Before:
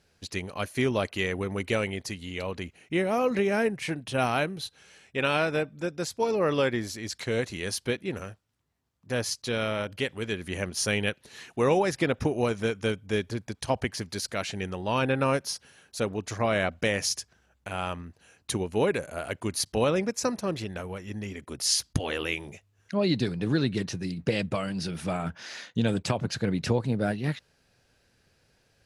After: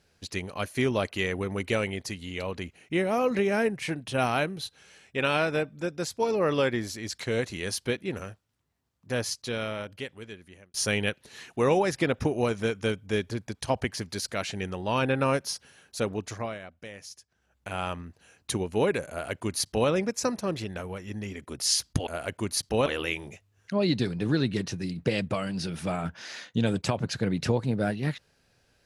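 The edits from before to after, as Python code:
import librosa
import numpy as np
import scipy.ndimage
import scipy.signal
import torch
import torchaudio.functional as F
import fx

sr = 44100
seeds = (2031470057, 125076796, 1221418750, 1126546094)

y = fx.edit(x, sr, fx.fade_out_span(start_s=9.12, length_s=1.62),
    fx.fade_down_up(start_s=16.18, length_s=1.51, db=-16.5, fade_s=0.41),
    fx.duplicate(start_s=19.1, length_s=0.79, to_s=22.07), tone=tone)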